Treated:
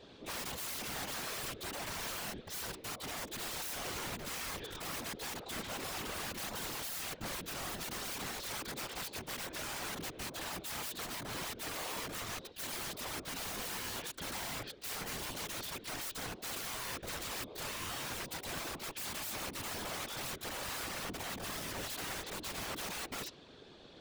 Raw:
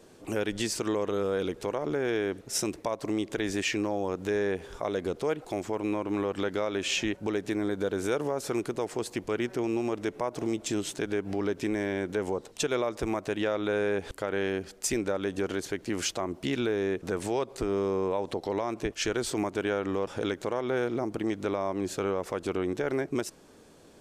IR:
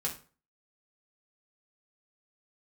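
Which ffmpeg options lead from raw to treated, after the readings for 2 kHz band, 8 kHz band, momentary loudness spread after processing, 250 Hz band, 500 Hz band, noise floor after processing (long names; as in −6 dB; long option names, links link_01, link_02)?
−5.5 dB, −2.5 dB, 2 LU, −17.5 dB, −18.5 dB, −55 dBFS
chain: -af "lowpass=frequency=3700:width_type=q:width=3.7,aeval=exprs='(mod(50.1*val(0)+1,2)-1)/50.1':channel_layout=same,afftfilt=real='hypot(re,im)*cos(2*PI*random(0))':imag='hypot(re,im)*sin(2*PI*random(1))':win_size=512:overlap=0.75,volume=4dB"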